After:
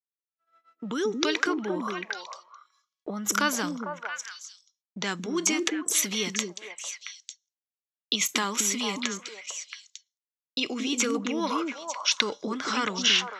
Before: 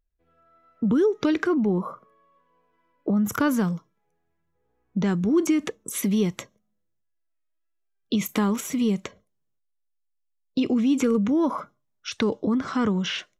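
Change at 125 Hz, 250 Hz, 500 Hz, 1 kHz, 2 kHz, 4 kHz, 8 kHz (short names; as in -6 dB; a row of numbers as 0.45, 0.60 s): -13.0, -9.0, -5.5, +1.5, +5.5, +9.5, +10.0 dB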